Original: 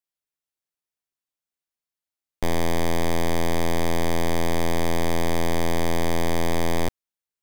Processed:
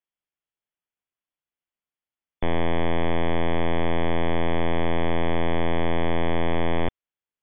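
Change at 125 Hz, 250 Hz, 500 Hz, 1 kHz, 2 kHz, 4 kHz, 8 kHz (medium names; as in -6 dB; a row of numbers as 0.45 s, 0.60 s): 0.0 dB, 0.0 dB, 0.0 dB, 0.0 dB, 0.0 dB, -3.5 dB, under -40 dB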